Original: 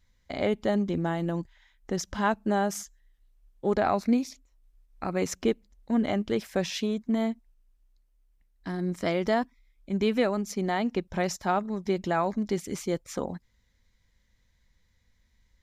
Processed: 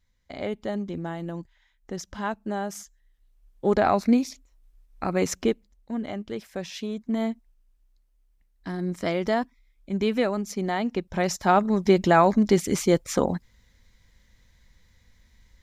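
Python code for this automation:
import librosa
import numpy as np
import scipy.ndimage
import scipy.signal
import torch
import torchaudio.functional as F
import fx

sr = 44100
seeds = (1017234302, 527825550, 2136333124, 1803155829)

y = fx.gain(x, sr, db=fx.line((2.68, -4.0), (3.68, 4.0), (5.34, 4.0), (5.98, -5.5), (6.66, -5.5), (7.24, 1.0), (11.06, 1.0), (11.7, 9.0)))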